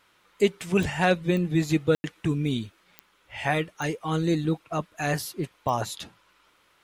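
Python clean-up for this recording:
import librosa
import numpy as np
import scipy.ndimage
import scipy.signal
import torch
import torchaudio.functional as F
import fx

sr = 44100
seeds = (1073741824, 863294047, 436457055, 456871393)

y = fx.fix_declick_ar(x, sr, threshold=10.0)
y = fx.fix_ambience(y, sr, seeds[0], print_start_s=6.31, print_end_s=6.81, start_s=1.95, end_s=2.04)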